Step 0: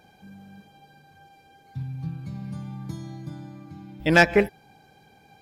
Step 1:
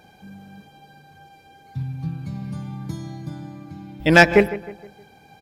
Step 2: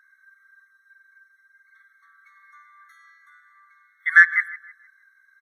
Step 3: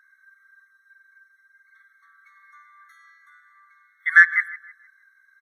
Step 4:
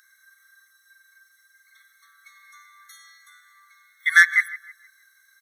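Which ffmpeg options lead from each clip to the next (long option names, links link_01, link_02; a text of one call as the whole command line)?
ffmpeg -i in.wav -filter_complex "[0:a]asplit=2[link_01][link_02];[link_02]adelay=156,lowpass=frequency=2300:poles=1,volume=-15dB,asplit=2[link_03][link_04];[link_04]adelay=156,lowpass=frequency=2300:poles=1,volume=0.44,asplit=2[link_05][link_06];[link_06]adelay=156,lowpass=frequency=2300:poles=1,volume=0.44,asplit=2[link_07][link_08];[link_08]adelay=156,lowpass=frequency=2300:poles=1,volume=0.44[link_09];[link_01][link_03][link_05][link_07][link_09]amix=inputs=5:normalize=0,volume=4.5dB" out.wav
ffmpeg -i in.wav -af "highshelf=frequency=2800:width_type=q:width=3:gain=-10,afftfilt=real='re*eq(mod(floor(b*sr/1024/1100),2),1)':imag='im*eq(mod(floor(b*sr/1024/1100),2),1)':win_size=1024:overlap=0.75,volume=-2dB" out.wav
ffmpeg -i in.wav -af anull out.wav
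ffmpeg -i in.wav -af "aexciter=amount=7.4:drive=4.4:freq=2500,volume=-1dB" out.wav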